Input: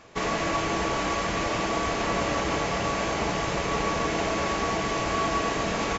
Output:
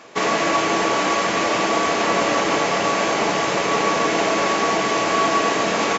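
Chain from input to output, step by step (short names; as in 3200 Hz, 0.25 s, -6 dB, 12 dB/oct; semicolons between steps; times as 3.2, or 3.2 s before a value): HPF 230 Hz 12 dB/oct; gain +8 dB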